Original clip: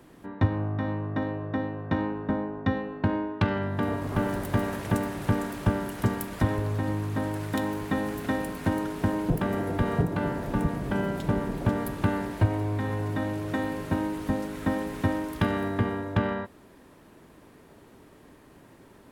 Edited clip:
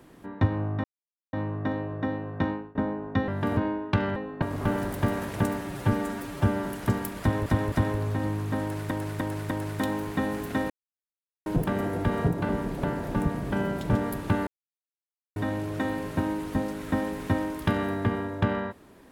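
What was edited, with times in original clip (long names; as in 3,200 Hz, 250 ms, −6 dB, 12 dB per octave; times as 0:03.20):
0:00.84: splice in silence 0.49 s
0:01.96–0:02.26: fade out, to −23.5 dB
0:02.79–0:03.05: swap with 0:03.64–0:03.93
0:05.12–0:05.82: time-stretch 1.5×
0:06.36–0:06.62: repeat, 3 plays
0:07.25–0:07.55: repeat, 4 plays
0:08.44–0:09.20: silence
0:11.32–0:11.67: move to 0:10.23
0:12.21–0:13.10: silence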